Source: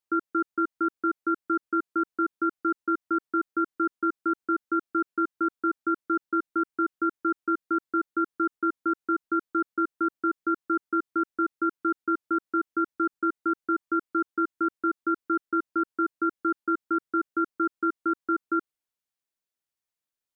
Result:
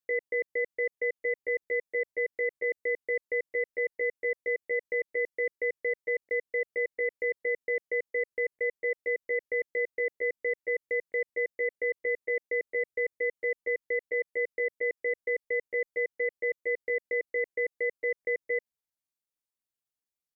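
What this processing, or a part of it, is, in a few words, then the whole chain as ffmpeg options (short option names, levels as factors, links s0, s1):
chipmunk voice: -af "equalizer=f=1000:w=0.32:g=-5.5,asetrate=64194,aresample=44100,atempo=0.686977"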